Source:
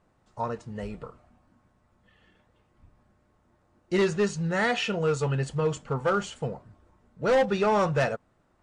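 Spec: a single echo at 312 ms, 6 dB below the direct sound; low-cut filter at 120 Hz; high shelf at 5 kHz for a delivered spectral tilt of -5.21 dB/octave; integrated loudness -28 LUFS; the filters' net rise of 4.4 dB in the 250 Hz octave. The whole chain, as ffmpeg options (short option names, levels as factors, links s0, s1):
-af "highpass=120,equalizer=f=250:t=o:g=7.5,highshelf=f=5000:g=4.5,aecho=1:1:312:0.501,volume=0.668"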